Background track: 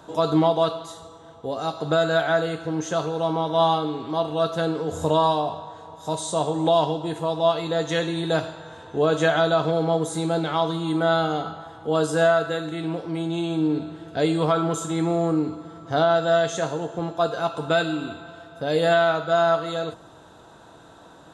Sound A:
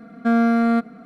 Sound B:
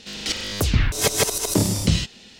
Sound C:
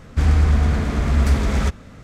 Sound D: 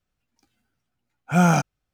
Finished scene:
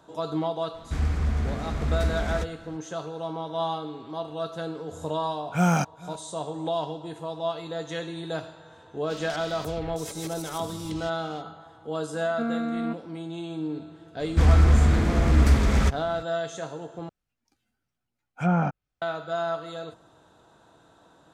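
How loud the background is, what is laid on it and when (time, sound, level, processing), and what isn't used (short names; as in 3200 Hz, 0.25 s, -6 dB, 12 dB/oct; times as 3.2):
background track -9 dB
0.74 add C -5 dB + flange 1.6 Hz, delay 1.7 ms, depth 7.3 ms, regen -75%
4.23 add D -4.5 dB + outdoor echo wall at 74 m, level -21 dB
9.04 add B -7 dB, fades 0.05 s + compressor 3:1, threshold -34 dBFS
12.13 add A -11 dB + air absorption 240 m
14.2 add C -1.5 dB
17.09 replace with D -5.5 dB + treble ducked by the level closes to 1500 Hz, closed at -15 dBFS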